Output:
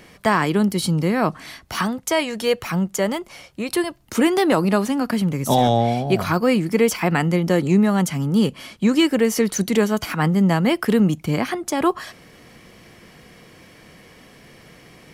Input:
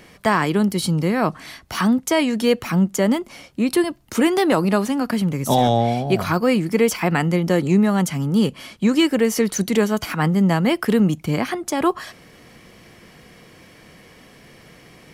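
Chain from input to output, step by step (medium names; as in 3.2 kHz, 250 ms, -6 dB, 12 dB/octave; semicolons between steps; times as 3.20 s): 1.82–4.00 s: peaking EQ 250 Hz -10.5 dB 0.67 oct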